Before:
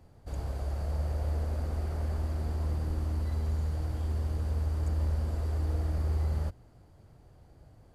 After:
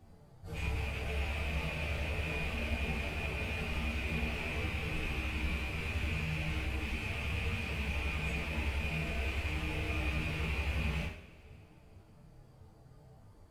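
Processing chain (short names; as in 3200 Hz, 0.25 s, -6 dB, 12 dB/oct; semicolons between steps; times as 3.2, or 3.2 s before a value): rattling part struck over -32 dBFS, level -26 dBFS; plain phase-vocoder stretch 1.7×; flange 0.75 Hz, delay 2.6 ms, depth 7.8 ms, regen -44%; two-slope reverb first 0.5 s, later 2.7 s, from -21 dB, DRR -5.5 dB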